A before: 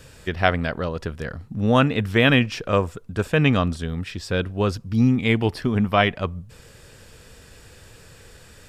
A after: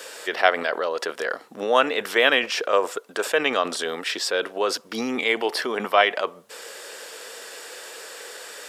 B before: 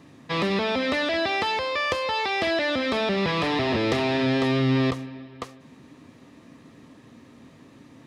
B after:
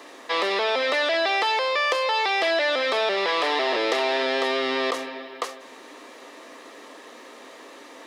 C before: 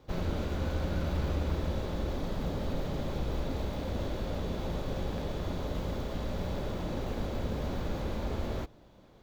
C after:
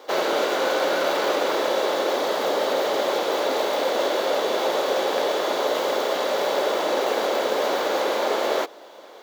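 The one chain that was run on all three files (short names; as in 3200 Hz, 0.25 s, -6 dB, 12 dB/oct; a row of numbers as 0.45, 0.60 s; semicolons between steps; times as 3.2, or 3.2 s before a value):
HPF 420 Hz 24 dB/oct; notch 2500 Hz, Q 20; in parallel at -1.5 dB: negative-ratio compressor -37 dBFS, ratio -1; on the sum: match loudness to -23 LUFS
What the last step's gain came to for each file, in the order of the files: +1.5, +1.5, +13.0 dB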